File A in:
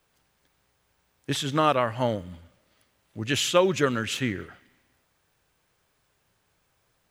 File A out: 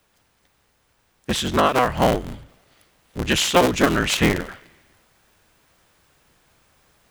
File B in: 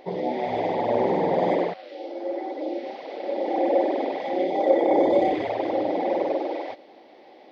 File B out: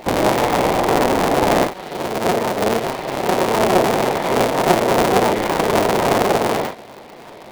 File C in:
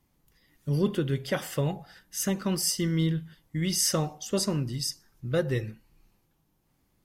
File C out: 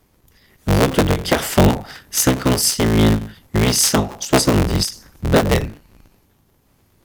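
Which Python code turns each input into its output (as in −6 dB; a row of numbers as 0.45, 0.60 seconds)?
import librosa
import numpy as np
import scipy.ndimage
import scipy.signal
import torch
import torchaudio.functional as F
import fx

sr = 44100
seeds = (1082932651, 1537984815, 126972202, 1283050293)

y = fx.cycle_switch(x, sr, every=3, mode='inverted')
y = fx.rider(y, sr, range_db=4, speed_s=0.5)
y = fx.end_taper(y, sr, db_per_s=170.0)
y = librosa.util.normalize(y) * 10.0 ** (-2 / 20.0)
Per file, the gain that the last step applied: +7.5, +7.5, +13.0 decibels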